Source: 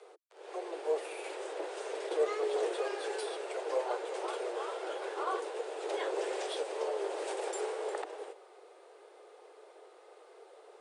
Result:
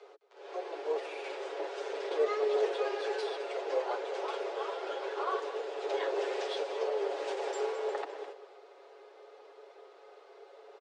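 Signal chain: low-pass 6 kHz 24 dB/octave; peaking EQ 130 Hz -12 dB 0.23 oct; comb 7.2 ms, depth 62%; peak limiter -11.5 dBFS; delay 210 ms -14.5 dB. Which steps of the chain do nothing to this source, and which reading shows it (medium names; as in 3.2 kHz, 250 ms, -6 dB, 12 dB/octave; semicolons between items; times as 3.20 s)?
peaking EQ 130 Hz: input has nothing below 290 Hz; peak limiter -11.5 dBFS: peak at its input -19.0 dBFS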